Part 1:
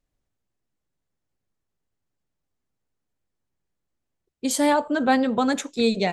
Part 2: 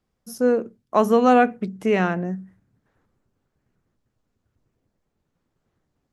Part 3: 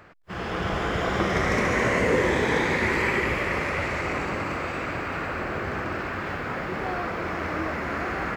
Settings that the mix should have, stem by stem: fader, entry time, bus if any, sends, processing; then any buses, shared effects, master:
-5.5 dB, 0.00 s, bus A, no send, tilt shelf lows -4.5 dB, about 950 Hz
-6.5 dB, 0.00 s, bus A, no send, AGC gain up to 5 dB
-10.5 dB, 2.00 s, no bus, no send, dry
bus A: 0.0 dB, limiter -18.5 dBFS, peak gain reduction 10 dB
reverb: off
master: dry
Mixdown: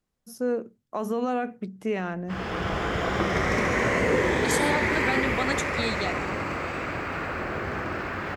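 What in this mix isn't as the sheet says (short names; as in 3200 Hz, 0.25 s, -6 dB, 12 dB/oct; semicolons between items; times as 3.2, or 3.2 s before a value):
stem 2: missing AGC gain up to 5 dB; stem 3 -10.5 dB -> -1.0 dB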